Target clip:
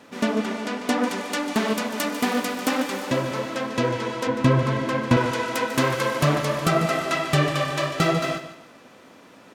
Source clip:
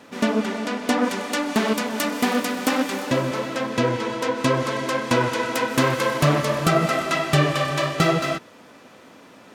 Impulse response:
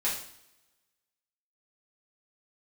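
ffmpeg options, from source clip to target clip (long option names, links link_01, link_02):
-filter_complex "[0:a]asettb=1/sr,asplit=3[link_01][link_02][link_03];[link_01]atrim=end=4.274[link_04];[link_02]atrim=start=4.27:end=5.17,asetpts=PTS-STARTPTS,afade=type=in:duration=0.004:curve=qsin,afade=type=out:start_time=0.896:duration=0.004:curve=qsin,bass=frequency=250:gain=11,treble=frequency=4000:gain=-7[link_05];[link_03]atrim=start=5.166[link_06];[link_04][link_05]acrossfade=duration=0.004:curve1=hsin:curve2=qsin[link_07];[link_07][link_06]acrossfade=duration=0.004:curve1=qsin:curve2=hsin,asplit=2[link_08][link_09];[link_09]aecho=0:1:146|292|438:0.237|0.0783|0.0258[link_10];[link_08][link_10]amix=inputs=2:normalize=0,volume=-2dB"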